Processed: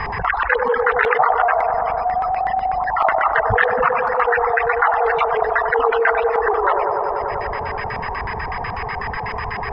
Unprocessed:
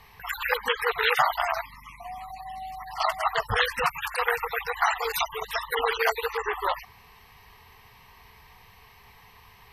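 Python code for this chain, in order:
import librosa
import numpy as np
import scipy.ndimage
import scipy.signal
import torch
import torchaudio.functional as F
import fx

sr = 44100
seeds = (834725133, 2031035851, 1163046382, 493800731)

y = x + 10.0 ** (-43.0 / 20.0) * np.sin(2.0 * np.pi * 5000.0 * np.arange(len(x)) / sr)
y = fx.peak_eq(y, sr, hz=8100.0, db=-14.0, octaves=1.5)
y = fx.filter_lfo_lowpass(y, sr, shape='square', hz=8.1, low_hz=750.0, high_hz=1700.0, q=2.5)
y = fx.dereverb_blind(y, sr, rt60_s=1.3)
y = fx.echo_wet_bandpass(y, sr, ms=97, feedback_pct=72, hz=460.0, wet_db=-6.5)
y = fx.env_flatten(y, sr, amount_pct=70)
y = y * 10.0 ** (1.5 / 20.0)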